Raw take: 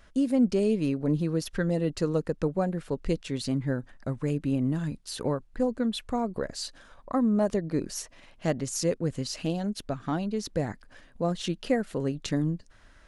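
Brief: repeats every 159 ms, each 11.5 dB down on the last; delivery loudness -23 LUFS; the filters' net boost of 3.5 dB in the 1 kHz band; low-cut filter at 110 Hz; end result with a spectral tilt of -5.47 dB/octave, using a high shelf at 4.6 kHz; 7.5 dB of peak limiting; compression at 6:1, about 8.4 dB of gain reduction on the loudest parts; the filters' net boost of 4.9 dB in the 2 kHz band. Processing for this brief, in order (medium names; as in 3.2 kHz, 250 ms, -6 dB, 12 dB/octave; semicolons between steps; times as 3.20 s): high-pass 110 Hz; peaking EQ 1 kHz +4 dB; peaking EQ 2 kHz +6 dB; treble shelf 4.6 kHz -7 dB; compression 6:1, threshold -28 dBFS; peak limiter -25.5 dBFS; feedback delay 159 ms, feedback 27%, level -11.5 dB; trim +12.5 dB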